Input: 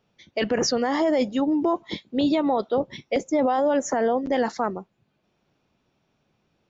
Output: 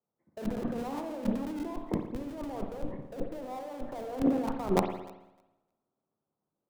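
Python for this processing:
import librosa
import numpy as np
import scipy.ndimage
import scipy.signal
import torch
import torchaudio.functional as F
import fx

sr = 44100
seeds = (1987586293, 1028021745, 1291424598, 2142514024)

p1 = scipy.signal.sosfilt(scipy.signal.butter(6, 1300.0, 'lowpass', fs=sr, output='sos'), x)
p2 = fx.low_shelf(p1, sr, hz=95.0, db=-10.0)
p3 = fx.hum_notches(p2, sr, base_hz=60, count=5)
p4 = fx.schmitt(p3, sr, flips_db=-26.5)
p5 = p3 + (p4 * librosa.db_to_amplitude(-3.0))
p6 = fx.over_compress(p5, sr, threshold_db=-32.0, ratio=-1.0)
p7 = p6 + fx.echo_thinned(p6, sr, ms=305, feedback_pct=35, hz=320.0, wet_db=-16.5, dry=0)
p8 = fx.rev_spring(p7, sr, rt60_s=1.5, pass_ms=(55,), chirp_ms=35, drr_db=4.5)
p9 = fx.band_widen(p8, sr, depth_pct=70)
y = p9 * librosa.db_to_amplitude(-4.0)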